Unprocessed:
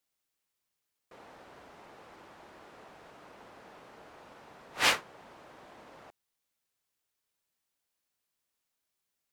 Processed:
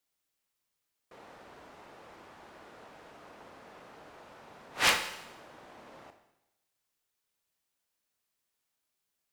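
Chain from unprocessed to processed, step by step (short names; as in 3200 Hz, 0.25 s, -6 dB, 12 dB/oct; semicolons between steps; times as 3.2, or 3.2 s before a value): wrapped overs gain 12 dB; Schroeder reverb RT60 0.91 s, combs from 26 ms, DRR 7.5 dB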